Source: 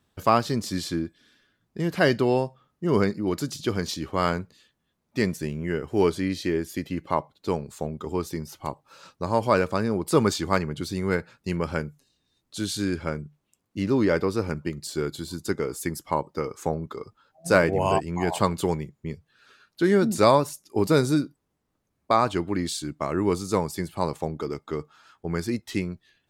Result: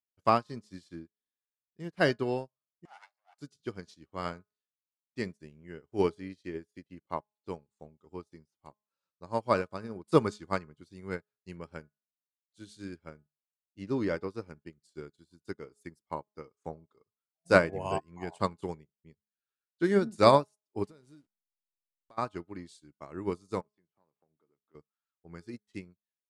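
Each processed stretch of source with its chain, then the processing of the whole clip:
0:02.85–0:03.39: lower of the sound and its delayed copy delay 1.4 ms + Chebyshev high-pass filter 750 Hz, order 4 + upward compression, threshold −39 dBFS
0:20.84–0:22.18: hold until the input has moved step −37 dBFS + downward compressor 4 to 1, threshold −30 dBFS
0:23.61–0:24.75: band-pass filter 130–2,600 Hz + downward compressor 3 to 1, threshold −37 dBFS
whole clip: Butterworth low-pass 11,000 Hz 48 dB per octave; hum removal 210.1 Hz, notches 8; expander for the loud parts 2.5 to 1, over −43 dBFS

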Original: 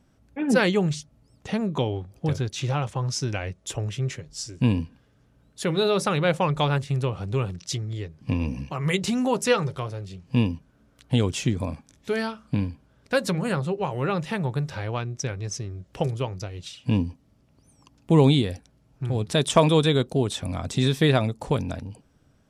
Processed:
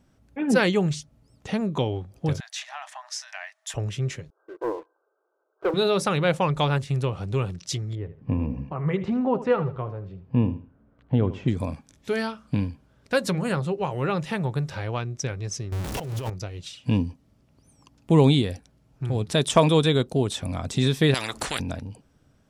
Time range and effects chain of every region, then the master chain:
0:02.40–0:03.74: parametric band 1,800 Hz +11.5 dB 0.32 octaves + downward compressor, threshold −28 dBFS + linear-phase brick-wall high-pass 600 Hz
0:04.30–0:05.74: linear-phase brick-wall band-pass 320–1,600 Hz + leveller curve on the samples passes 2
0:07.95–0:11.48: low-pass filter 1,300 Hz + repeating echo 78 ms, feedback 27%, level −14 dB
0:15.72–0:16.30: converter with a step at zero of −29 dBFS + compressor whose output falls as the input rises −29 dBFS
0:21.14–0:21.60: high-shelf EQ 3,100 Hz −9 dB + every bin compressed towards the loudest bin 10 to 1
whole clip: no processing

